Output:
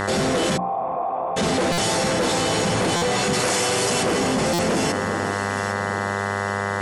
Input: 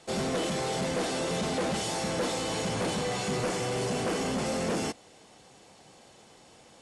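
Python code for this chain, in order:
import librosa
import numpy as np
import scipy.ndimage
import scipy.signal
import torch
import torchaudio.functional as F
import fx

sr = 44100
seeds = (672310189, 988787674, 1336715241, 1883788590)

y = fx.tilt_eq(x, sr, slope=2.0, at=(3.33, 4.03))
y = fx.echo_alternate(y, sr, ms=403, hz=1800.0, feedback_pct=58, wet_db=-12.5)
y = fx.dmg_buzz(y, sr, base_hz=100.0, harmonics=20, level_db=-42.0, tilt_db=-1, odd_only=False)
y = fx.formant_cascade(y, sr, vowel='a', at=(0.56, 1.36), fade=0.02)
y = fx.hum_notches(y, sr, base_hz=60, count=5)
y = fx.buffer_glitch(y, sr, at_s=(1.72, 2.96, 4.53), block=256, repeats=9)
y = fx.env_flatten(y, sr, amount_pct=70)
y = F.gain(torch.from_numpy(y), 7.0).numpy()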